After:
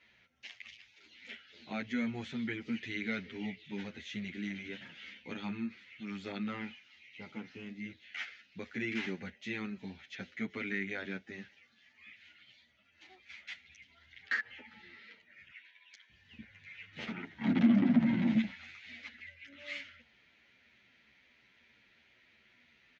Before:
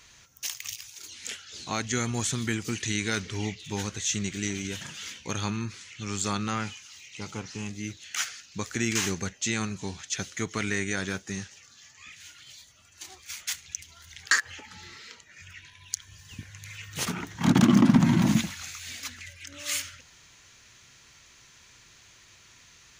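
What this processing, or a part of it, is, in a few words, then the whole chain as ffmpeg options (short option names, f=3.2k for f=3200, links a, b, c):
barber-pole flanger into a guitar amplifier: -filter_complex "[0:a]asettb=1/sr,asplit=3[a][b][c];[a]atrim=end=15.494[d];[b]atrim=start=15.49:end=16.1,asetpts=PTS-STARTPTS,afade=t=in:d=0.004:c=qsin,afade=t=out:st=0.606:d=0.004:c=qsin,highpass=640[e];[c]atrim=start=16.096[f];[d][e]acrossfade=d=0.004:c1=hsin:c2=qsin[g];[g][f]acrossfade=d=0.004:c1=qsin:c2=hsin,asplit=2[h][i];[i]adelay=9.8,afreqshift=-3[j];[h][j]amix=inputs=2:normalize=1,asoftclip=type=tanh:threshold=-17dB,highpass=81,equalizer=f=100:t=q:w=4:g=-10,equalizer=f=150:t=q:w=4:g=-6,equalizer=f=230:t=q:w=4:g=9,equalizer=f=580:t=q:w=4:g=3,equalizer=f=1.1k:t=q:w=4:g=-9,equalizer=f=2.1k:t=q:w=4:g=7,lowpass=f=3.5k:w=0.5412,lowpass=f=3.5k:w=1.3066,volume=-6.5dB"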